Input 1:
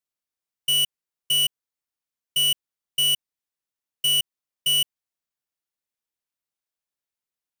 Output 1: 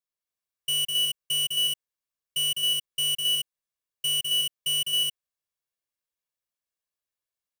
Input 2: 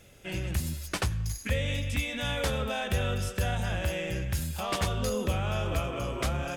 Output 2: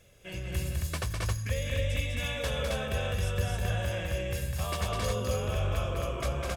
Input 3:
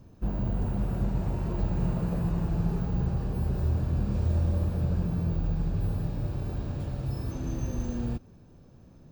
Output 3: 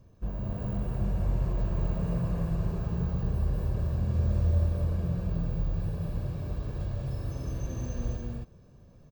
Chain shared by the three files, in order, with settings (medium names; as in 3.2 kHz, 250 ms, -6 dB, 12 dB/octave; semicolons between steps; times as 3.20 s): comb 1.8 ms, depth 37%; on a send: loudspeakers at several distances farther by 70 m -4 dB, 92 m -2 dB; on the sum: trim -5.5 dB